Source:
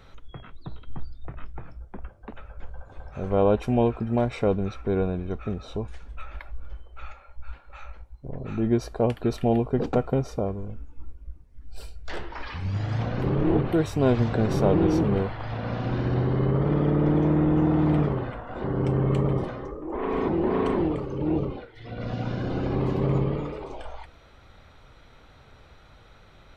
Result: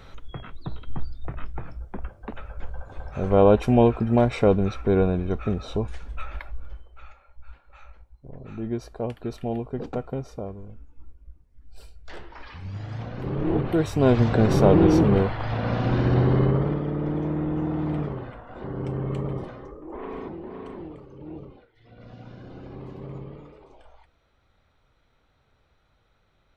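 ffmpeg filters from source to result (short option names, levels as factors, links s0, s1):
-af "volume=5.96,afade=t=out:st=6.23:d=0.81:silence=0.281838,afade=t=in:st=13.17:d=1.27:silence=0.281838,afade=t=out:st=16.35:d=0.46:silence=0.316228,afade=t=out:st=19.93:d=0.48:silence=0.375837"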